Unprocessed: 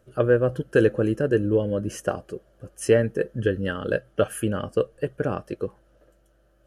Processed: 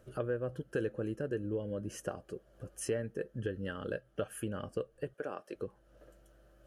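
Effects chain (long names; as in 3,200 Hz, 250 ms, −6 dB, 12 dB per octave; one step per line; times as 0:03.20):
0:05.14–0:05.55: high-pass filter 370 Hz 12 dB per octave
downward compressor 2 to 1, threshold −45 dBFS, peak gain reduction 17 dB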